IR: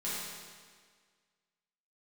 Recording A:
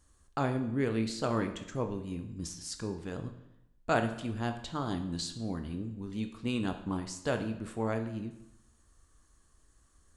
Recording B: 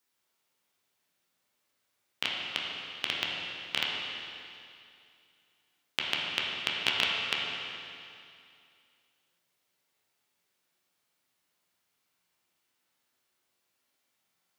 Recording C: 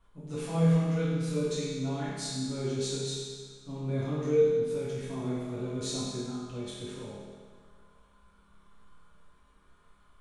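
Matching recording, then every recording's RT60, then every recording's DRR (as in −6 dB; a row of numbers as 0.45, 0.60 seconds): C; 0.80, 2.5, 1.7 seconds; 6.5, −4.0, −10.0 decibels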